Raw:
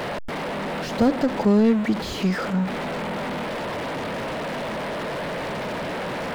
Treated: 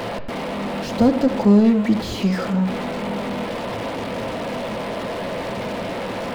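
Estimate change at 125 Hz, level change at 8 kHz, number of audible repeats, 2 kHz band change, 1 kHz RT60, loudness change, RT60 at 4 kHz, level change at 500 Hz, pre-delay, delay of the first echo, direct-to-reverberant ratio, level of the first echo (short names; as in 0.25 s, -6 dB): +3.5 dB, +1.5 dB, none, -1.0 dB, 0.85 s, +3.0 dB, 0.90 s, +2.0 dB, 3 ms, none, 6.5 dB, none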